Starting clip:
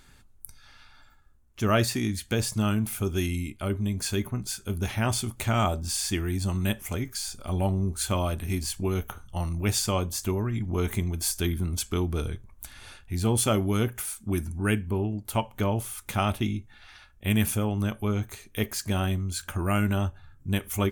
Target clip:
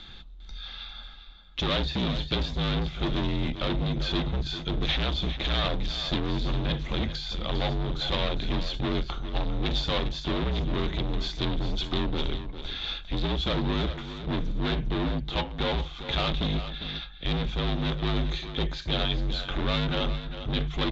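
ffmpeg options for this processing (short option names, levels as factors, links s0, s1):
-filter_complex "[0:a]deesser=0.85,tiltshelf=f=890:g=3.5,bandreject=f=50:t=h:w=6,bandreject=f=100:t=h:w=6,bandreject=f=150:t=h:w=6,bandreject=f=200:t=h:w=6,alimiter=limit=0.168:level=0:latency=1:release=419,acontrast=71,aresample=16000,asoftclip=type=hard:threshold=0.0501,aresample=44100,lowpass=f=3700:t=q:w=9.3,asplit=2[s0][s1];[s1]aecho=0:1:401:0.282[s2];[s0][s2]amix=inputs=2:normalize=0,afreqshift=-52"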